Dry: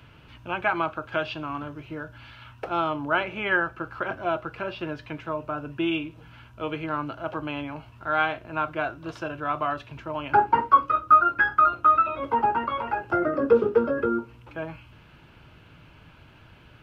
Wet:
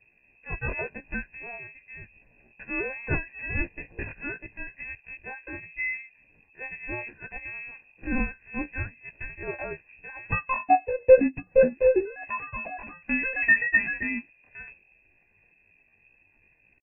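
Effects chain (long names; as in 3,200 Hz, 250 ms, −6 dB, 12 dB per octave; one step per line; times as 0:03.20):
sub-octave generator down 1 octave, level −5 dB
linear-prediction vocoder at 8 kHz pitch kept
pitch shifter +9 semitones
parametric band 140 Hz +5 dB 1 octave
phaser with its sweep stopped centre 1,300 Hz, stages 6
double-tracking delay 16 ms −12.5 dB
voice inversion scrambler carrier 2,600 Hz
low-shelf EQ 110 Hz +11.5 dB
expander for the loud parts 1.5 to 1, over −40 dBFS
level +1.5 dB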